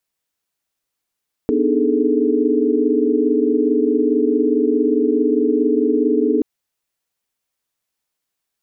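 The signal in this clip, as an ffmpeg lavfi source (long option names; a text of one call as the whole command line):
ffmpeg -f lavfi -i "aevalsrc='0.1*(sin(2*PI*246.94*t)+sin(2*PI*293.66*t)+sin(2*PI*311.13*t)+sin(2*PI*415.3*t)+sin(2*PI*440*t))':duration=4.93:sample_rate=44100" out.wav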